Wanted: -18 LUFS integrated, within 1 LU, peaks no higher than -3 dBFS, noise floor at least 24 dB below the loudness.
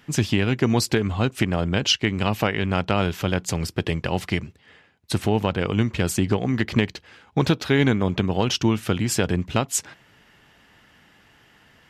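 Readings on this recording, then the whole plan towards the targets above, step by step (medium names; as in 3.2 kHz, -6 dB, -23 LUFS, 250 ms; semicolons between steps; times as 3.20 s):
loudness -23.0 LUFS; peak level -6.0 dBFS; loudness target -18.0 LUFS
-> trim +5 dB; peak limiter -3 dBFS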